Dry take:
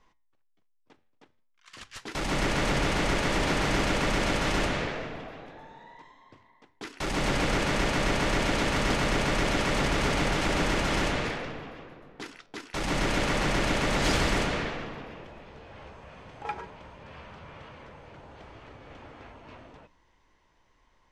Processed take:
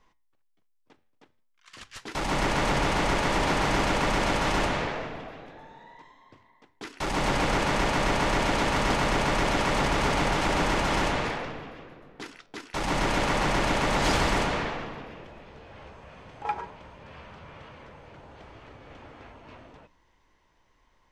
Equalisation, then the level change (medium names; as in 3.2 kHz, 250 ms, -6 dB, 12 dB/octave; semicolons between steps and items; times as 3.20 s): dynamic bell 910 Hz, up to +6 dB, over -45 dBFS, Q 1.7; 0.0 dB